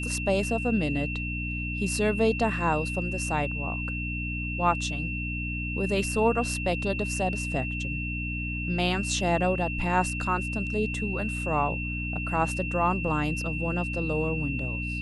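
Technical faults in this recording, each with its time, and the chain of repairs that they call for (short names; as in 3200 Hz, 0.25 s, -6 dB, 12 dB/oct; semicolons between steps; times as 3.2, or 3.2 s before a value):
hum 60 Hz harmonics 5 -33 dBFS
tone 2700 Hz -33 dBFS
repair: de-hum 60 Hz, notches 5; notch 2700 Hz, Q 30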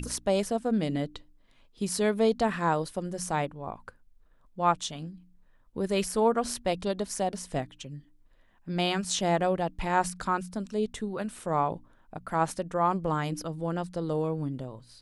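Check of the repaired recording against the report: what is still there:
none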